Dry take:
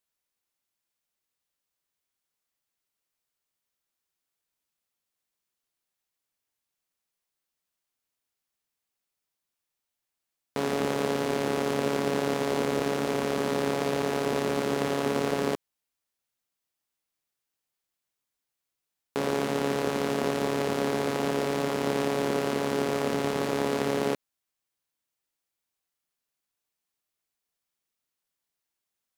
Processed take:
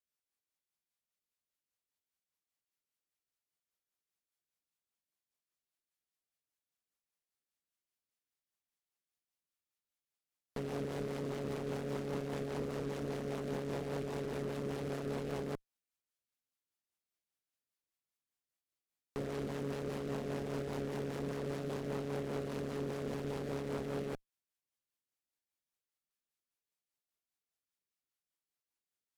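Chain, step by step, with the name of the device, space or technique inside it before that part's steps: overdriven rotary cabinet (valve stage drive 30 dB, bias 0.75; rotary cabinet horn 5 Hz); trim -2 dB

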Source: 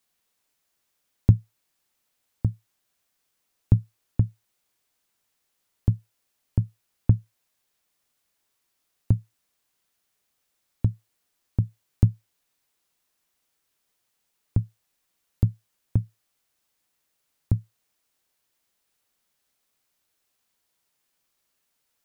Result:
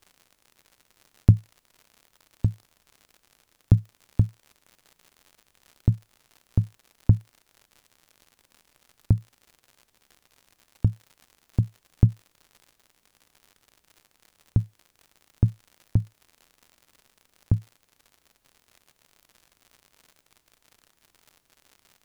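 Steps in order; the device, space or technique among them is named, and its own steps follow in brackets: vinyl LP (wow and flutter; crackle 97 per s -41 dBFS; pink noise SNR 45 dB); trim +1 dB

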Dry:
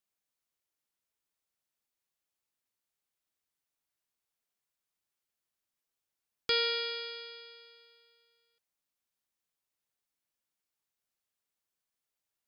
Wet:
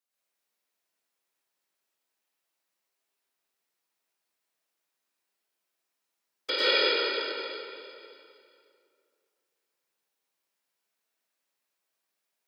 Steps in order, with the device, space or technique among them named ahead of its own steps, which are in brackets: whispering ghost (whisper effect; high-pass 270 Hz 12 dB/octave; reverberation RT60 2.2 s, pre-delay 92 ms, DRR -9 dB); trim -1.5 dB

